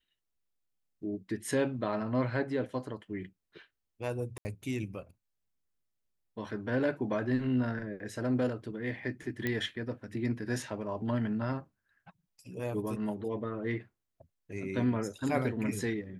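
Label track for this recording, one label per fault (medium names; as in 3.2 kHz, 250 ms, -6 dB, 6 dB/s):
4.380000	4.450000	dropout 70 ms
9.470000	9.470000	pop -18 dBFS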